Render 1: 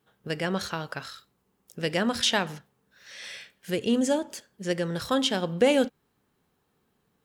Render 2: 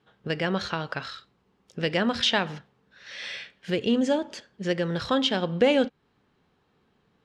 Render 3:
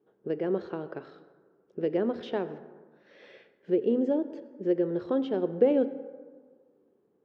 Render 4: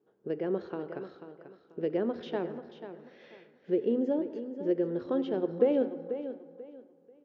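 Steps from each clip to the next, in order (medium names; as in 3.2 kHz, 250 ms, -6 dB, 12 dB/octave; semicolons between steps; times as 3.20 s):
Chebyshev low-pass 3.8 kHz, order 2; in parallel at -1 dB: compression, threshold -34 dBFS, peak gain reduction 16 dB
band-pass filter 380 Hz, Q 3; plate-style reverb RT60 1.6 s, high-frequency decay 0.4×, pre-delay 75 ms, DRR 14.5 dB; trim +5 dB
feedback delay 489 ms, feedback 26%, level -11 dB; resampled via 16 kHz; trim -2.5 dB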